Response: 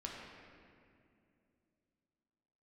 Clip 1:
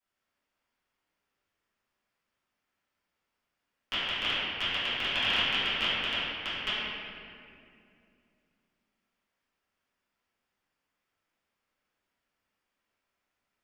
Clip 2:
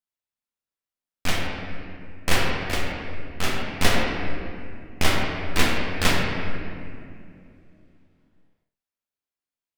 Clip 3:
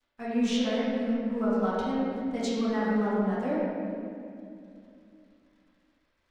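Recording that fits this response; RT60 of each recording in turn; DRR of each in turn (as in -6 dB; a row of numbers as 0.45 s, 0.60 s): 2; 2.5 s, 2.5 s, 2.5 s; -16.0 dB, -3.0 dB, -10.5 dB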